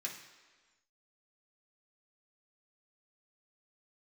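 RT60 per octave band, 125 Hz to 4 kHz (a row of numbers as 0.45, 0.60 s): 1.1, 1.3, 1.4, 1.4, 1.4, 1.3 s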